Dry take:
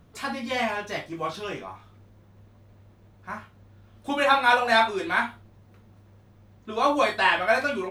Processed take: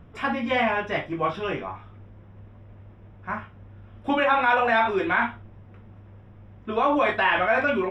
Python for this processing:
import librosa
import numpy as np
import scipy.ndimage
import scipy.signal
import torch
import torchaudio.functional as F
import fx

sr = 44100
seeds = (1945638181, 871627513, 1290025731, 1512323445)

p1 = fx.over_compress(x, sr, threshold_db=-26.0, ratio=-1.0)
p2 = x + (p1 * 10.0 ** (0.5 / 20.0))
p3 = scipy.signal.savgol_filter(p2, 25, 4, mode='constant')
p4 = fx.low_shelf(p3, sr, hz=77.0, db=5.0)
y = p4 * 10.0 ** (-3.0 / 20.0)